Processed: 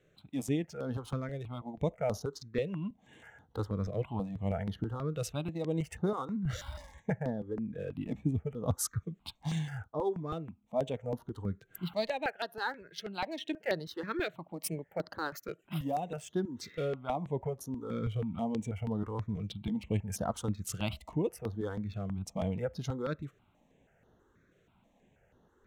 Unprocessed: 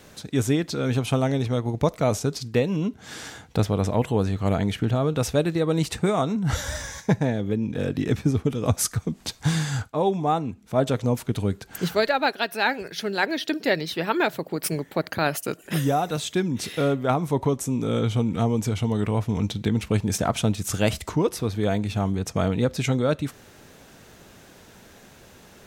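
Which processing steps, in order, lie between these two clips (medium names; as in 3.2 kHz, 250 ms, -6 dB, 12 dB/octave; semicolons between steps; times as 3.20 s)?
local Wiener filter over 9 samples; spectral noise reduction 7 dB; stepped phaser 6.2 Hz 240–7900 Hz; trim -8 dB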